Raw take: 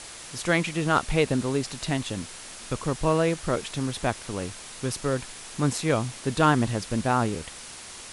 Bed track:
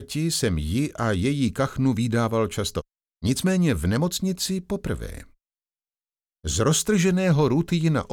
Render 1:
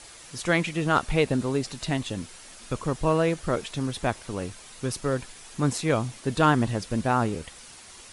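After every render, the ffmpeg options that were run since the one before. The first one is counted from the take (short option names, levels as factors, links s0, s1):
-af "afftdn=nr=7:nf=-42"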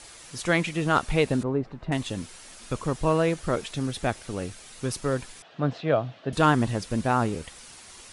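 -filter_complex "[0:a]asettb=1/sr,asplit=3[s0][s1][s2];[s0]atrim=end=1.434[s3];[s1]atrim=start=1.43:end=1.92,asetpts=PTS-STARTPTS,afade=t=in:d=0.004:c=qsin,afade=t=out:st=0.486:d=0.004:c=qsin,lowpass=1200[s4];[s2]atrim=start=1.916[s5];[s3][s4]acrossfade=d=0.004:c1=hsin:c2=qsin[s6];[s6][s5]acrossfade=d=0.004:c1=qsin:c2=hsin,asettb=1/sr,asplit=3[s7][s8][s9];[s7]atrim=end=3.714[s10];[s8]atrim=start=3.71:end=4.77,asetpts=PTS-STARTPTS,afade=t=in:d=0.004:c=qsin,afade=t=out:st=1.056:d=0.004:c=qsin,equalizer=f=1000:t=o:w=0.22:g=-7[s11];[s9]atrim=start=4.766[s12];[s10][s11]acrossfade=d=0.004:c1=hsin:c2=qsin[s13];[s13][s12]acrossfade=d=0.004:c1=qsin:c2=hsin,asettb=1/sr,asplit=3[s14][s15][s16];[s14]atrim=end=5.424[s17];[s15]atrim=start=5.42:end=6.33,asetpts=PTS-STARTPTS,afade=t=in:d=0.004:c=qsin,afade=t=out:st=0.906:d=0.004:c=qsin,highpass=f=120:w=0.5412,highpass=f=120:w=1.3066,equalizer=f=220:t=q:w=4:g=-8,equalizer=f=360:t=q:w=4:g=-5,equalizer=f=650:t=q:w=4:g=9,equalizer=f=960:t=q:w=4:g=-6,equalizer=f=2200:t=q:w=4:g=-8,lowpass=f=3400:w=0.5412,lowpass=f=3400:w=1.3066[s18];[s16]atrim=start=6.326[s19];[s17][s18]acrossfade=d=0.004:c1=hsin:c2=qsin[s20];[s20][s19]acrossfade=d=0.004:c1=qsin:c2=hsin"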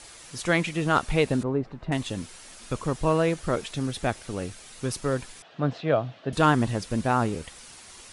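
-af anull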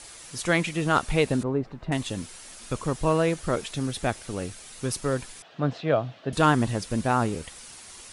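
-af "crystalizer=i=0.5:c=0"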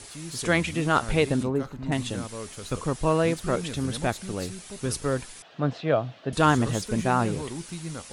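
-filter_complex "[1:a]volume=0.188[s0];[0:a][s0]amix=inputs=2:normalize=0"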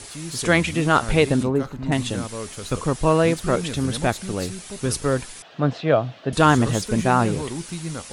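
-af "volume=1.78,alimiter=limit=0.708:level=0:latency=1"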